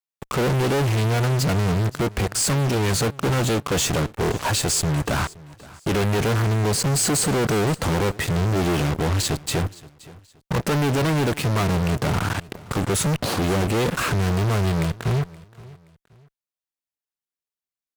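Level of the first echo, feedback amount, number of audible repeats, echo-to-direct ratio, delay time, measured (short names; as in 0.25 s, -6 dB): -21.0 dB, 32%, 2, -20.5 dB, 0.523 s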